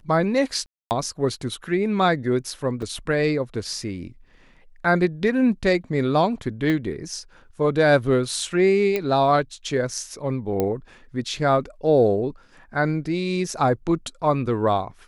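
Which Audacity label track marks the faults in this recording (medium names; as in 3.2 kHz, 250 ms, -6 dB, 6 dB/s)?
0.660000	0.910000	dropout 249 ms
2.820000	2.820000	dropout 4.6 ms
6.700000	6.700000	pop -14 dBFS
8.960000	8.960000	pop -11 dBFS
10.600000	10.600000	pop -10 dBFS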